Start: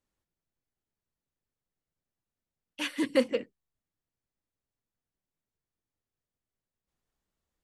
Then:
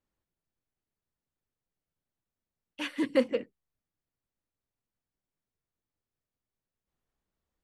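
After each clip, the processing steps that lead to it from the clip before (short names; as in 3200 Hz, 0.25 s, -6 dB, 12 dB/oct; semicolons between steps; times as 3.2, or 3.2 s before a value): high shelf 3900 Hz -9 dB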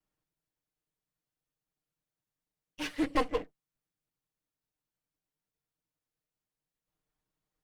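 minimum comb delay 6.5 ms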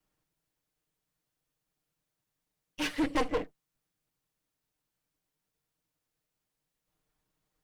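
soft clip -29.5 dBFS, distortion -9 dB; gain +6 dB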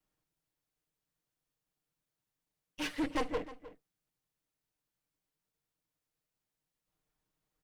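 outdoor echo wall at 53 m, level -16 dB; gain -4.5 dB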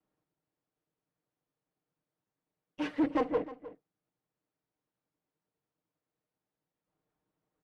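band-pass 390 Hz, Q 0.5; gain +6 dB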